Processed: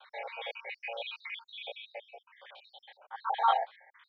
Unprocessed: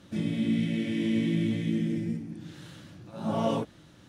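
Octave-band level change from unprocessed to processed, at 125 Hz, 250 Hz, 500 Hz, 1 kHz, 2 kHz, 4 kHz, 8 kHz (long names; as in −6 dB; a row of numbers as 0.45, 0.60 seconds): below −40 dB, below −40 dB, −7.0 dB, +9.0 dB, +1.0 dB, 0.0 dB, can't be measured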